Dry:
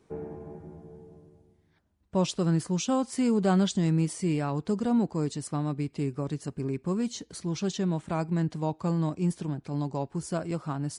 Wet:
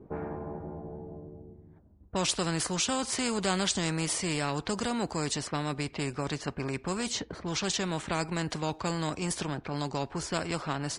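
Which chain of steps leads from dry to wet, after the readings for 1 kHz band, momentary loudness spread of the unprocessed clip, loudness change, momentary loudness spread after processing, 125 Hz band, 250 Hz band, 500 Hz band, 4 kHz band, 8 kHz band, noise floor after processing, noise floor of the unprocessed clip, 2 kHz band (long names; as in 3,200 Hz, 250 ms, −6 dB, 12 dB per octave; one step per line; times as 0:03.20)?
+1.5 dB, 9 LU, −2.5 dB, 10 LU, −6.0 dB, −6.0 dB, −2.0 dB, +8.0 dB, +7.0 dB, −55 dBFS, −67 dBFS, +8.0 dB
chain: low-pass that shuts in the quiet parts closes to 560 Hz, open at −25 dBFS
every bin compressed towards the loudest bin 2 to 1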